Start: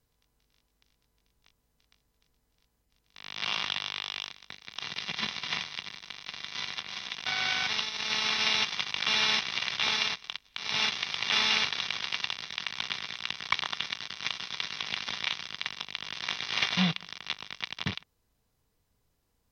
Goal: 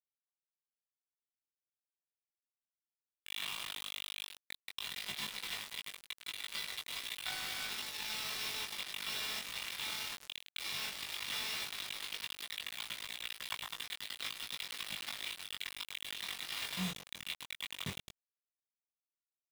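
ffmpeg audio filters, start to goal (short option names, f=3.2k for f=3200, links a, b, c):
-filter_complex "[0:a]asoftclip=type=tanh:threshold=-21dB,afftfilt=real='re*gte(hypot(re,im),0.0158)':imag='im*gte(hypot(re,im),0.0158)':win_size=1024:overlap=0.75,highshelf=f=6.2k:g=8,asplit=2[a][b];[b]adelay=106,lowpass=f=2.9k:p=1,volume=-10.5dB,asplit=2[c][d];[d]adelay=106,lowpass=f=2.9k:p=1,volume=0.42,asplit=2[e][f];[f]adelay=106,lowpass=f=2.9k:p=1,volume=0.42,asplit=2[g][h];[h]adelay=106,lowpass=f=2.9k:p=1,volume=0.42[i];[c][e][g][i]amix=inputs=4:normalize=0[j];[a][j]amix=inputs=2:normalize=0,acompressor=threshold=-39dB:ratio=16,acrusher=bits=6:mix=0:aa=0.000001,flanger=delay=18.5:depth=3.2:speed=0.15,volume=5dB"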